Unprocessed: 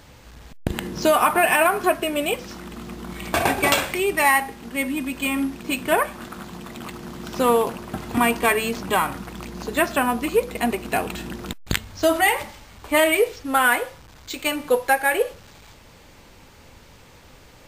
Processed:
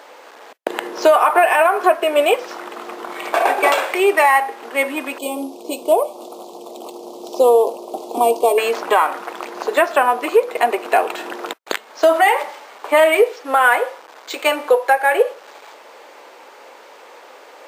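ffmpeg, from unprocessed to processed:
-filter_complex "[0:a]asettb=1/sr,asplit=3[s0][s1][s2];[s0]atrim=end=5.184[s3];[s1]atrim=start=5.18:end=8.58,asetpts=PTS-STARTPTS,afade=t=in:d=0.004:c=qsin,afade=t=out:st=3.396:d=0.004:c=qsin,asuperstop=centerf=1700:order=4:qfactor=0.51[s4];[s2]atrim=start=8.576[s5];[s3][s4]acrossfade=d=0.004:c1=hsin:c2=qsin[s6];[s6][s5]acrossfade=d=0.004:c1=qsin:c2=hsin,highpass=f=380:w=0.5412,highpass=f=380:w=1.3066,equalizer=f=720:w=0.33:g=12.5,alimiter=limit=0.631:level=0:latency=1:release=294"

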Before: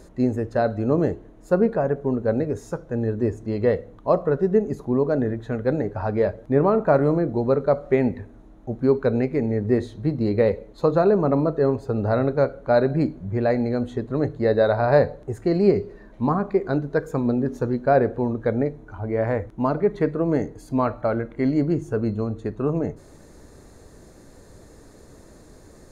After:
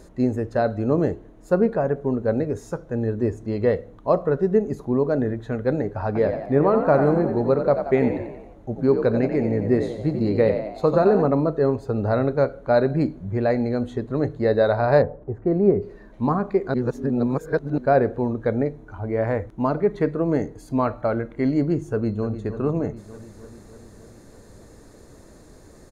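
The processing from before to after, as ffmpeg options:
-filter_complex "[0:a]asettb=1/sr,asplit=3[s0][s1][s2];[s0]atrim=end=6.064[s3];[s1]atrim=start=6.06:end=11.26,asetpts=PTS-STARTPTS,afade=t=in:d=0.004:c=qsin,afade=t=out:st=5.196:d=0.004:c=qsin,asplit=7[s4][s5][s6][s7][s8][s9][s10];[s5]adelay=89,afreqshift=52,volume=0.398[s11];[s6]adelay=178,afreqshift=104,volume=0.204[s12];[s7]adelay=267,afreqshift=156,volume=0.104[s13];[s8]adelay=356,afreqshift=208,volume=0.0531[s14];[s9]adelay=445,afreqshift=260,volume=0.0269[s15];[s10]adelay=534,afreqshift=312,volume=0.0138[s16];[s4][s11][s12][s13][s14][s15][s16]amix=inputs=7:normalize=0,atrim=end_sample=229320[s17];[s2]atrim=start=11.256[s18];[s3][s17]acrossfade=d=0.004:c1=hsin:c2=qsin[s19];[s19][s18]acrossfade=d=0.004:c1=qsin:c2=hsin,asplit=3[s20][s21][s22];[s20]afade=t=out:st=15.01:d=0.02[s23];[s21]lowpass=1100,afade=t=in:st=15.01:d=0.02,afade=t=out:st=15.81:d=0.02[s24];[s22]afade=t=in:st=15.81:d=0.02[s25];[s23][s24][s25]amix=inputs=3:normalize=0,asplit=2[s26][s27];[s27]afade=t=in:st=21.92:d=0.01,afade=t=out:st=22.41:d=0.01,aecho=0:1:300|600|900|1200|1500|1800|2100|2400|2700|3000:0.281838|0.197287|0.138101|0.0966705|0.0676694|0.0473686|0.033158|0.0232106|0.0162474|0.0113732[s28];[s26][s28]amix=inputs=2:normalize=0,asplit=3[s29][s30][s31];[s29]atrim=end=16.742[s32];[s30]atrim=start=16.738:end=17.782,asetpts=PTS-STARTPTS,areverse[s33];[s31]atrim=start=17.778[s34];[s32][s33]acrossfade=d=0.004:c1=hsin:c2=hsin[s35];[s35][s34]acrossfade=d=0.004:c1=hsin:c2=hsin"

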